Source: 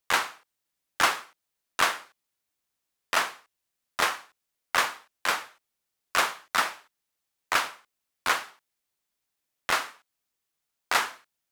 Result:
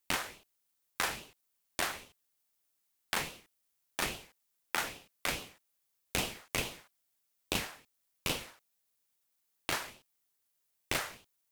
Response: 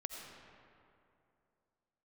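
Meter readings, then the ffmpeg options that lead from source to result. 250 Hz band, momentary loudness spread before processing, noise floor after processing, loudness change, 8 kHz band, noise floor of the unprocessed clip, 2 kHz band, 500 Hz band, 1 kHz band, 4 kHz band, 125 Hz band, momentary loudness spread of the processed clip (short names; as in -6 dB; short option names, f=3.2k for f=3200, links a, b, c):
+1.0 dB, 13 LU, -79 dBFS, -9.0 dB, -5.0 dB, -83 dBFS, -10.0 dB, -6.0 dB, -13.0 dB, -7.0 dB, +7.0 dB, 14 LU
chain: -af "crystalizer=i=1:c=0,acompressor=threshold=-29dB:ratio=3,aeval=exprs='val(0)*sin(2*PI*960*n/s+960*0.7/2.4*sin(2*PI*2.4*n/s))':c=same"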